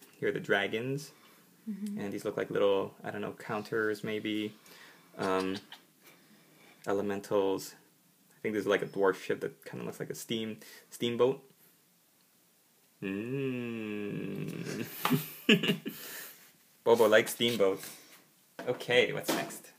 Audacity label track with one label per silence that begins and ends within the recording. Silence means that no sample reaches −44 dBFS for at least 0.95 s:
11.370000	13.020000	silence